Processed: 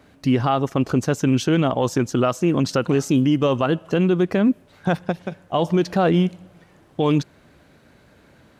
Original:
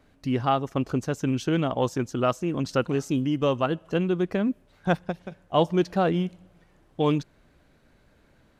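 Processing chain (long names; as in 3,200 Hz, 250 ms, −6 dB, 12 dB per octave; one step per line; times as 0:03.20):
high-pass filter 77 Hz
brickwall limiter −19 dBFS, peak gain reduction 11 dB
level +9 dB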